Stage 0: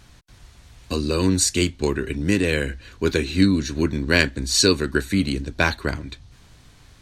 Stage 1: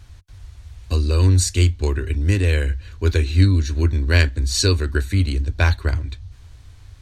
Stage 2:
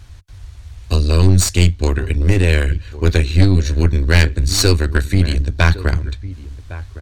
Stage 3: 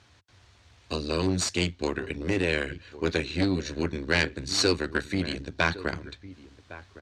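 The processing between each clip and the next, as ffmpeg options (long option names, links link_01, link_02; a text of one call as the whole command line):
ffmpeg -i in.wav -af "lowshelf=frequency=120:width_type=q:width=3:gain=9,volume=-2.5dB" out.wav
ffmpeg -i in.wav -filter_complex "[0:a]asplit=2[link_01][link_02];[link_02]adelay=1108,volume=-16dB,highshelf=frequency=4000:gain=-24.9[link_03];[link_01][link_03]amix=inputs=2:normalize=0,aeval=exprs='0.891*(cos(1*acos(clip(val(0)/0.891,-1,1)))-cos(1*PI/2))+0.141*(cos(6*acos(clip(val(0)/0.891,-1,1)))-cos(6*PI/2))':channel_layout=same,acontrast=28,volume=-1dB" out.wav
ffmpeg -i in.wav -af "highpass=210,lowpass=5900,volume=-6.5dB" out.wav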